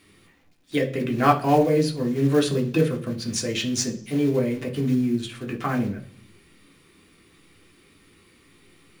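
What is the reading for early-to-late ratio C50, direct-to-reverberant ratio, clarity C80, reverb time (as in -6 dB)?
12.5 dB, 0.5 dB, 17.5 dB, 0.50 s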